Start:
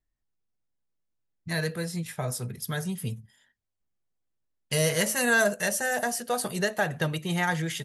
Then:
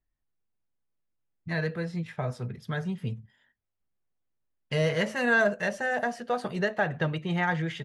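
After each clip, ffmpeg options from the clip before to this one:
-af "lowpass=2.7k"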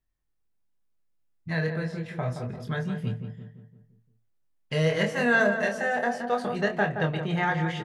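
-filter_complex "[0:a]asplit=2[a][b];[b]adelay=25,volume=-5.5dB[c];[a][c]amix=inputs=2:normalize=0,asplit=2[d][e];[e]adelay=172,lowpass=f=1.6k:p=1,volume=-7dB,asplit=2[f][g];[g]adelay=172,lowpass=f=1.6k:p=1,volume=0.5,asplit=2[h][i];[i]adelay=172,lowpass=f=1.6k:p=1,volume=0.5,asplit=2[j][k];[k]adelay=172,lowpass=f=1.6k:p=1,volume=0.5,asplit=2[l][m];[m]adelay=172,lowpass=f=1.6k:p=1,volume=0.5,asplit=2[n][o];[o]adelay=172,lowpass=f=1.6k:p=1,volume=0.5[p];[f][h][j][l][n][p]amix=inputs=6:normalize=0[q];[d][q]amix=inputs=2:normalize=0"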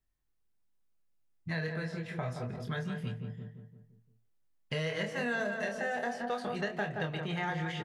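-filter_complex "[0:a]acrossover=split=920|2200|4600[a][b][c][d];[a]acompressor=threshold=-33dB:ratio=4[e];[b]acompressor=threshold=-41dB:ratio=4[f];[c]acompressor=threshold=-41dB:ratio=4[g];[d]acompressor=threshold=-56dB:ratio=4[h];[e][f][g][h]amix=inputs=4:normalize=0,asplit=2[i][j];[j]adelay=150,highpass=300,lowpass=3.4k,asoftclip=type=hard:threshold=-30dB,volume=-17dB[k];[i][k]amix=inputs=2:normalize=0,volume=-1.5dB"

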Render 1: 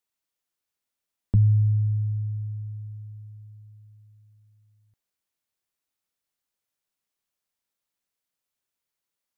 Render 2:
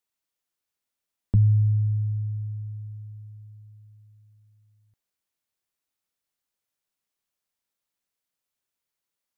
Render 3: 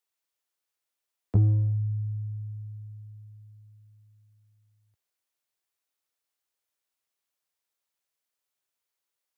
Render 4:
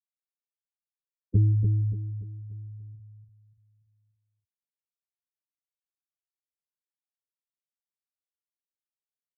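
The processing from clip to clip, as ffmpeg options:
-af anull
-filter_complex "[0:a]highpass=77,acrossover=split=120|270[a][b][c];[b]acrusher=bits=3:mix=0:aa=0.5[d];[a][d][c]amix=inputs=3:normalize=0"
-filter_complex "[0:a]afftfilt=real='re*gte(hypot(re,im),0.0794)':imag='im*gte(hypot(re,im),0.0794)':win_size=1024:overlap=0.75,asplit=2[a][b];[b]aecho=0:1:290|580|870|1160|1450:0.501|0.205|0.0842|0.0345|0.0142[c];[a][c]amix=inputs=2:normalize=0"

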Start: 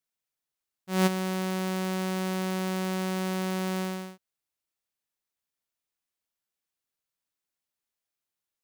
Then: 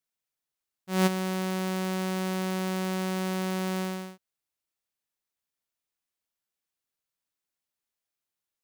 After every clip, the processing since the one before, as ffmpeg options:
-af anull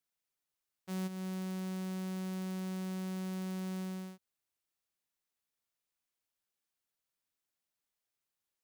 -filter_complex "[0:a]acrossover=split=250|4200[a][b][c];[a]acompressor=threshold=-37dB:ratio=4[d];[b]acompressor=threshold=-47dB:ratio=4[e];[c]acompressor=threshold=-50dB:ratio=4[f];[d][e][f]amix=inputs=3:normalize=0,volume=-1.5dB"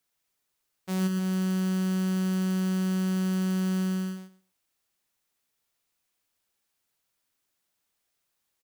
-af "aecho=1:1:117|234|351:0.501|0.0802|0.0128,volume=9dB"

